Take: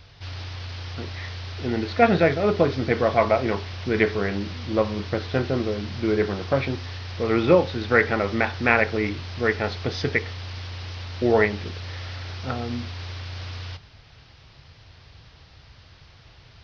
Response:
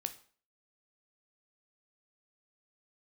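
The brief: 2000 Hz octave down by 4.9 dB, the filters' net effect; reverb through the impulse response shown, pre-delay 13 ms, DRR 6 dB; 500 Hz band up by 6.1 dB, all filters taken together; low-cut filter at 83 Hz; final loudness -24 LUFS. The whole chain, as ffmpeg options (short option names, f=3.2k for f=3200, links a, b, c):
-filter_complex "[0:a]highpass=83,equalizer=f=500:t=o:g=7.5,equalizer=f=2k:t=o:g=-6.5,asplit=2[a][b];[1:a]atrim=start_sample=2205,adelay=13[c];[b][c]afir=irnorm=-1:irlink=0,volume=-5dB[d];[a][d]amix=inputs=2:normalize=0,volume=-5dB"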